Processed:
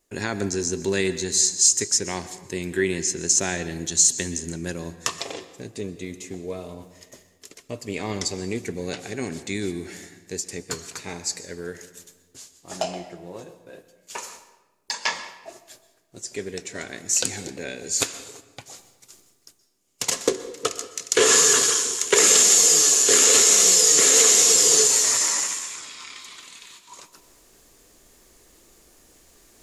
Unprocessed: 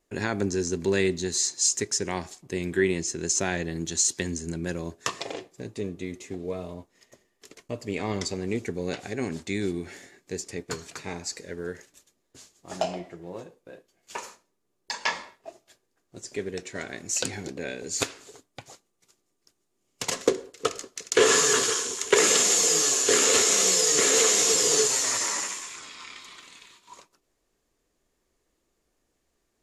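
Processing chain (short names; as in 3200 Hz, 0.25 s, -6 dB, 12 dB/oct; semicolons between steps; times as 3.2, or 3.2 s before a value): high shelf 4700 Hz +9.5 dB; reverse; upward compressor, threshold -39 dBFS; reverse; reverb RT60 1.2 s, pre-delay 0.117 s, DRR 13.5 dB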